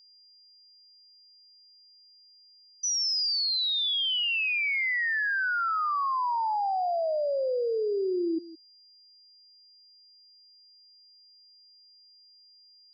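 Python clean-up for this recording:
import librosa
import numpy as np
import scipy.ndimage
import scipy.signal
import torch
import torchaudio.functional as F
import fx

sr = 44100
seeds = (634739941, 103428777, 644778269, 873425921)

y = fx.notch(x, sr, hz=4800.0, q=30.0)
y = fx.fix_echo_inverse(y, sr, delay_ms=166, level_db=-17.0)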